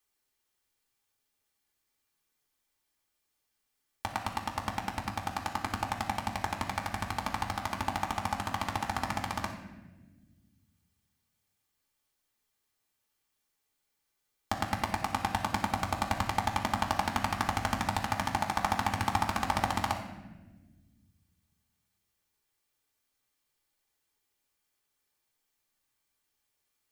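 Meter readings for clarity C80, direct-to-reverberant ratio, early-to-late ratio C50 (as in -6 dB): 8.5 dB, -2.0 dB, 6.5 dB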